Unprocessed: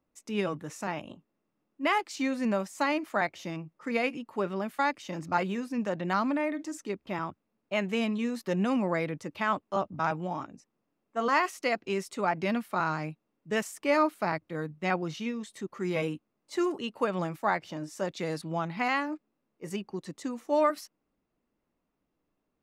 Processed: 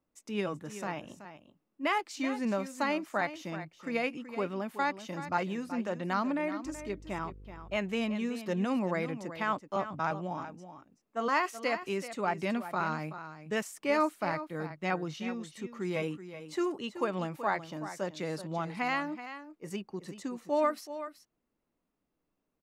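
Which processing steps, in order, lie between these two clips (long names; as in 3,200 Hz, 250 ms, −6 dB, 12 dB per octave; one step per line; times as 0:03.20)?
0:06.64–0:07.76: hum with harmonics 50 Hz, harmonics 10, −48 dBFS −7 dB per octave
on a send: single-tap delay 378 ms −12 dB
on the sum: level −3 dB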